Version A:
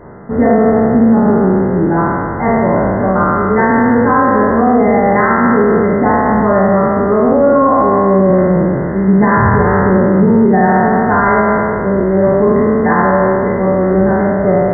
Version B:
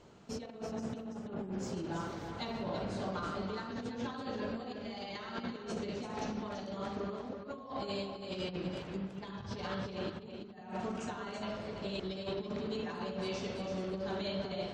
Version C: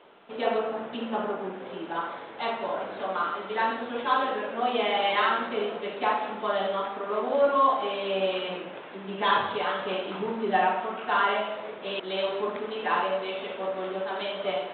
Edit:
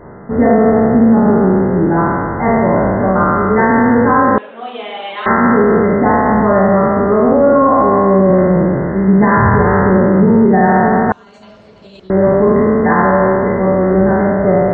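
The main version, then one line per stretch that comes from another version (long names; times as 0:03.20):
A
0:04.38–0:05.26: punch in from C
0:11.12–0:12.10: punch in from B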